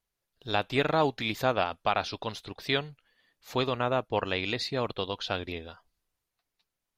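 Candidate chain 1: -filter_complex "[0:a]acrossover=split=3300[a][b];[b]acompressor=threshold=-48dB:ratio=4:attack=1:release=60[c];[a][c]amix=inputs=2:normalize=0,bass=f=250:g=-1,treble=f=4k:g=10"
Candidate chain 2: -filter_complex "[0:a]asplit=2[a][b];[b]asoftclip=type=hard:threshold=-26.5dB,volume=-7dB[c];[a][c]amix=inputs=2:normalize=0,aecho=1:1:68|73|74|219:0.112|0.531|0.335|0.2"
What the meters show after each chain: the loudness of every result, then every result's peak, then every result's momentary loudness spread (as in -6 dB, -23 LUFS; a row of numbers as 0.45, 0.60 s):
-30.5, -27.0 LUFS; -11.5, -10.5 dBFS; 11, 10 LU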